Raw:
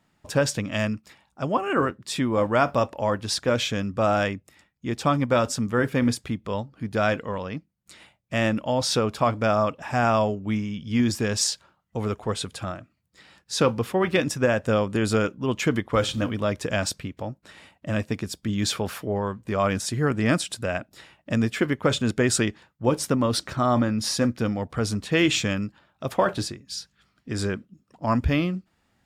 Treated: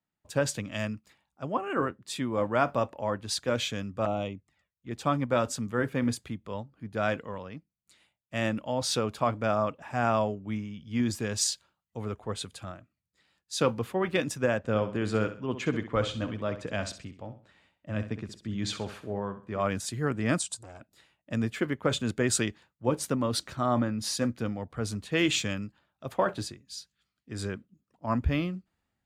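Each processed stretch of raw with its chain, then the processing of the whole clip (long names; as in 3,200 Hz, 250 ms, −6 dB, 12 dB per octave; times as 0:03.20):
0:04.05–0:04.91: flanger swept by the level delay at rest 2.4 ms, full sweep at −22.5 dBFS + high-frequency loss of the air 71 metres
0:14.58–0:19.61: high-frequency loss of the air 68 metres + repeating echo 65 ms, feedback 37%, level −11 dB
0:20.39–0:20.80: drawn EQ curve 120 Hz 0 dB, 320 Hz −13 dB, 1,000 Hz +2 dB, 2,000 Hz −11 dB, 8,300 Hz +6 dB, 14,000 Hz −14 dB + saturating transformer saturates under 1,400 Hz
whole clip: notch filter 5,400 Hz, Q 12; multiband upward and downward expander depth 40%; level −6 dB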